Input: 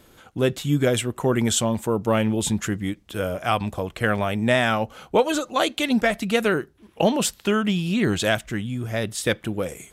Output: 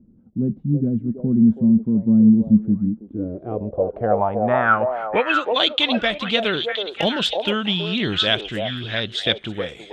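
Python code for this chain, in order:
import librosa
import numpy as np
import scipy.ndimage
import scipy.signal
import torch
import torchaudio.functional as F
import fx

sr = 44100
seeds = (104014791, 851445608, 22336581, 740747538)

y = fx.filter_sweep_lowpass(x, sr, from_hz=220.0, to_hz=3500.0, start_s=2.93, end_s=5.6, q=5.6)
y = fx.clip_hard(y, sr, threshold_db=-9.0, at=(6.41, 7.56))
y = fx.echo_stepped(y, sr, ms=324, hz=600.0, octaves=1.4, feedback_pct=70, wet_db=-1.0)
y = y * librosa.db_to_amplitude(-2.5)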